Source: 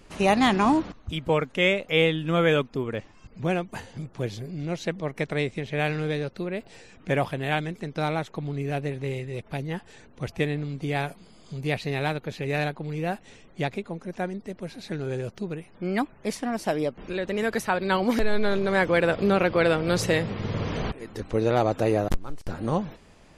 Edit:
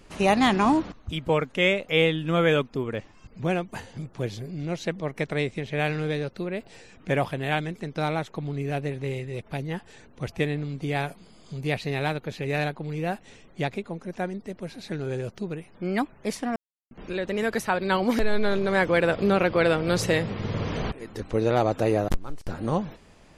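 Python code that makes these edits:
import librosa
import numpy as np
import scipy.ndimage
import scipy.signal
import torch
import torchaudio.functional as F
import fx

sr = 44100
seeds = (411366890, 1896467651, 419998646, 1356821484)

y = fx.edit(x, sr, fx.silence(start_s=16.56, length_s=0.35), tone=tone)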